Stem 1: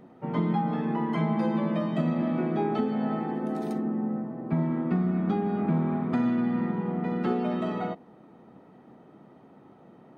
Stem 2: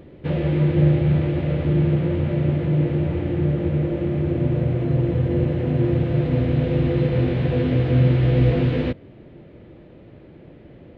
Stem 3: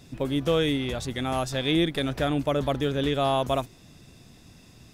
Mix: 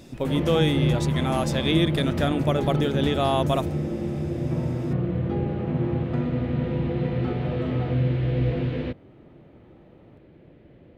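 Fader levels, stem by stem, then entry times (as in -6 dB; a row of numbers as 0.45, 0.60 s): -5.5, -6.5, +1.0 dB; 0.00, 0.00, 0.00 s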